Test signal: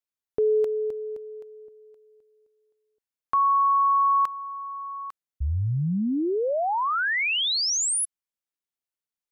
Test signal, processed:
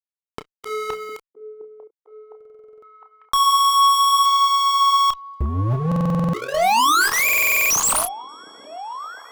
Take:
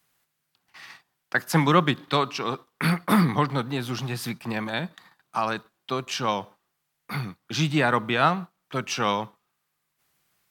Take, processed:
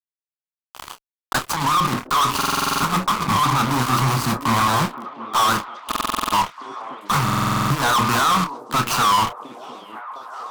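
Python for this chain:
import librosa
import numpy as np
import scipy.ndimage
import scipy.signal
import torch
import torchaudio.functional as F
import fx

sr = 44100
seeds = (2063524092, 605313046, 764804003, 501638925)

p1 = scipy.ndimage.median_filter(x, 25, mode='constant')
p2 = fx.peak_eq(p1, sr, hz=2200.0, db=-14.5, octaves=1.1)
p3 = fx.hum_notches(p2, sr, base_hz=60, count=10)
p4 = fx.over_compress(p3, sr, threshold_db=-30.0, ratio=-1.0)
p5 = fx.low_shelf_res(p4, sr, hz=750.0, db=-13.5, q=3.0)
p6 = fx.fuzz(p5, sr, gain_db=46.0, gate_db=-49.0)
p7 = fx.chorus_voices(p6, sr, voices=2, hz=0.65, base_ms=29, depth_ms=3.4, mix_pct=25)
p8 = p7 + fx.echo_stepped(p7, sr, ms=708, hz=360.0, octaves=0.7, feedback_pct=70, wet_db=-8.5, dry=0)
y = fx.buffer_glitch(p8, sr, at_s=(2.36, 5.87, 7.24), block=2048, repeats=9)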